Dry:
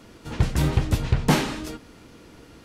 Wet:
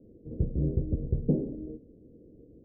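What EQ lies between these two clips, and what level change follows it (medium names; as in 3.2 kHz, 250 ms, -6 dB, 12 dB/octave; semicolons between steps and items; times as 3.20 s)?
steep low-pass 520 Hz 48 dB/octave; dynamic bell 110 Hz, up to -7 dB, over -39 dBFS, Q 6.9; bass shelf 330 Hz -4.5 dB; -2.0 dB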